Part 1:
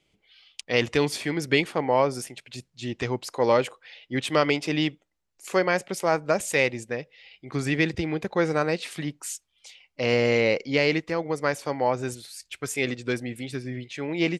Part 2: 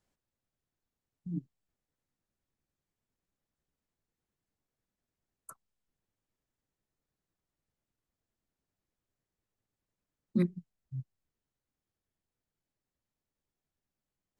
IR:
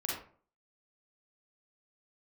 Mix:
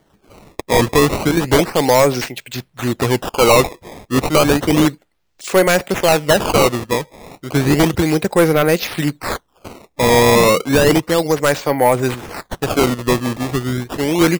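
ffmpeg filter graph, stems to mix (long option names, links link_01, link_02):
-filter_complex "[0:a]acrusher=samples=17:mix=1:aa=0.000001:lfo=1:lforange=27.2:lforate=0.32,volume=2dB[link_01];[1:a]volume=-4.5dB[link_02];[link_01][link_02]amix=inputs=2:normalize=0,aeval=exprs='0.631*(cos(1*acos(clip(val(0)/0.631,-1,1)))-cos(1*PI/2))+0.316*(cos(5*acos(clip(val(0)/0.631,-1,1)))-cos(5*PI/2))':channel_layout=same"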